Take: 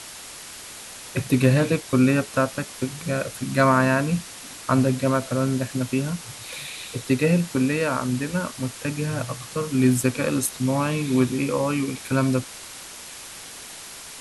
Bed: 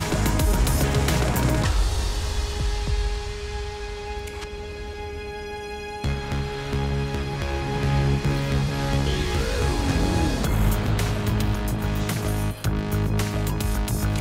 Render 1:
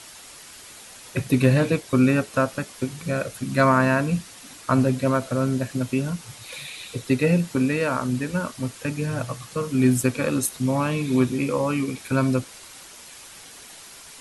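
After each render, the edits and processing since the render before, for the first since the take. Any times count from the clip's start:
broadband denoise 6 dB, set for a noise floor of −40 dBFS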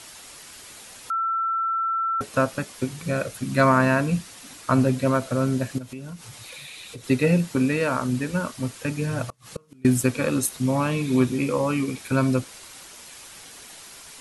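0:01.10–0:02.21: beep over 1,340 Hz −21.5 dBFS
0:05.78–0:07.04: downward compressor 3 to 1, threshold −37 dBFS
0:09.29–0:09.85: gate with flip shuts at −20 dBFS, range −31 dB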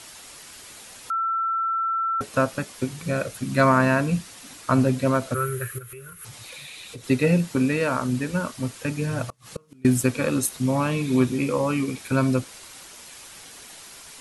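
0:05.34–0:06.25: drawn EQ curve 120 Hz 0 dB, 260 Hz −30 dB, 390 Hz +3 dB, 780 Hz −24 dB, 1,300 Hz +8 dB, 3,500 Hz −6 dB, 5,000 Hz −12 dB, 7,800 Hz −2 dB, 11,000 Hz +13 dB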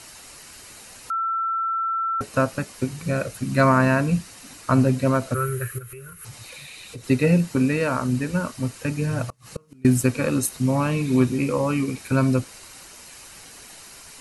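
low-shelf EQ 140 Hz +5.5 dB
notch filter 3,400 Hz, Q 8.8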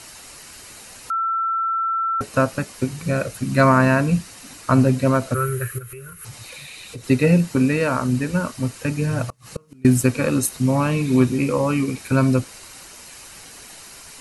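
level +2.5 dB

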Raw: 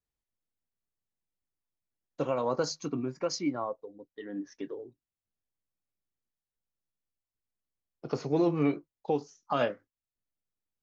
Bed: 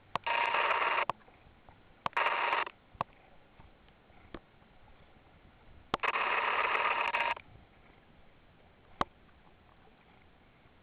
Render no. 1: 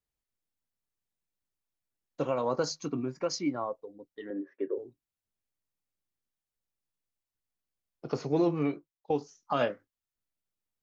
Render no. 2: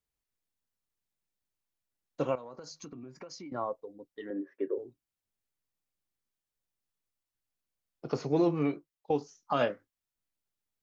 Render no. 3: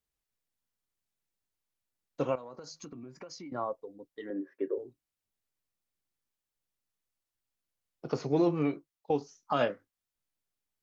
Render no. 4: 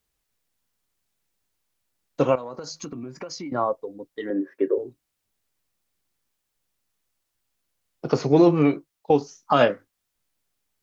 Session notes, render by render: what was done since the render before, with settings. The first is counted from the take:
0:04.30–0:04.78: loudspeaker in its box 260–2,200 Hz, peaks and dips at 380 Hz +10 dB, 550 Hz +9 dB, 800 Hz −9 dB; 0:08.44–0:09.10: fade out, to −17.5 dB
0:02.35–0:03.52: downward compressor 20 to 1, threshold −41 dBFS
tape wow and flutter 29 cents
level +10.5 dB

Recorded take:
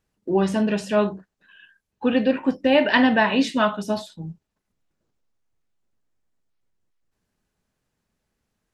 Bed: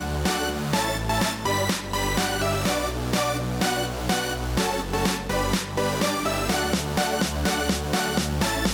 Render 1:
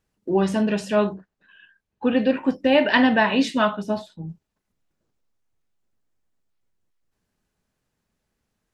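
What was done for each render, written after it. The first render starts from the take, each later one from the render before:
0:01.14–0:02.19: low-pass filter 3,300 Hz 6 dB per octave
0:03.73–0:04.28: high-shelf EQ 4,200 Hz → 2,600 Hz −11 dB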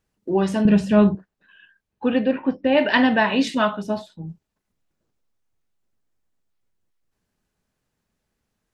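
0:00.65–0:01.15: bass and treble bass +15 dB, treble −5 dB
0:02.19–0:02.77: high-frequency loss of the air 230 metres
0:03.47–0:03.87: upward compression, threshold −26 dBFS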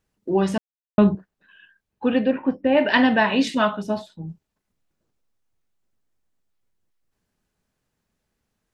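0:00.58–0:00.98: silence
0:02.30–0:02.87: parametric band 4,400 Hz −8 dB 1.3 octaves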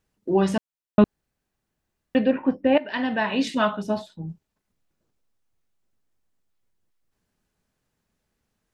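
0:01.04–0:02.15: fill with room tone
0:02.78–0:04.24: fade in equal-power, from −18 dB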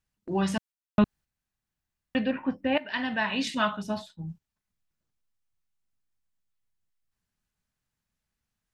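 noise gate −41 dBFS, range −6 dB
parametric band 420 Hz −10.5 dB 1.8 octaves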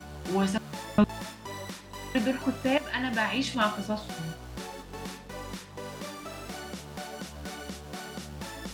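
mix in bed −15.5 dB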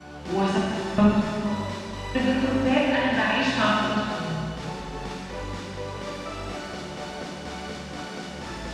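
high-frequency loss of the air 77 metres
dense smooth reverb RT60 2.2 s, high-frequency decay 0.95×, DRR −6 dB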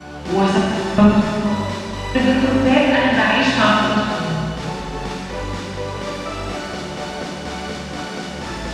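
level +7.5 dB
brickwall limiter −2 dBFS, peak gain reduction 1.5 dB

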